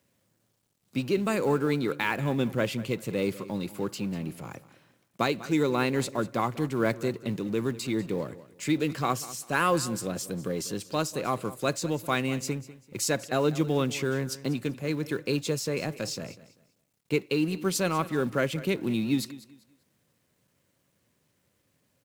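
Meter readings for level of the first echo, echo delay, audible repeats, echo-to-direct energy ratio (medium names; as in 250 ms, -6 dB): -17.0 dB, 195 ms, 2, -16.5 dB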